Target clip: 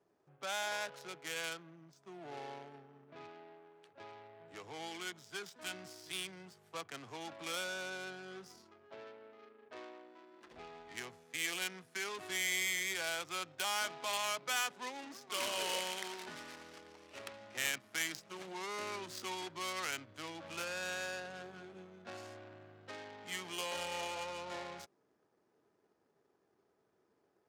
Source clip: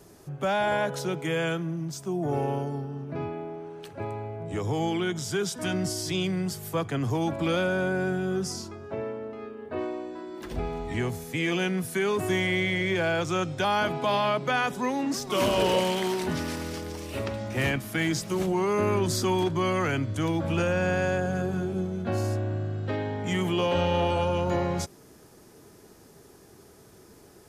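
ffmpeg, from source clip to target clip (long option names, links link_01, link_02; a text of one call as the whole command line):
ffmpeg -i in.wav -af "adynamicsmooth=sensitivity=3.5:basefreq=710,aderivative,volume=4.5dB" out.wav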